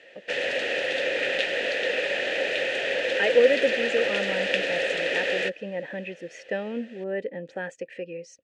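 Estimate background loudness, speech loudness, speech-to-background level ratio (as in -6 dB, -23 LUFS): -25.5 LUFS, -28.5 LUFS, -3.0 dB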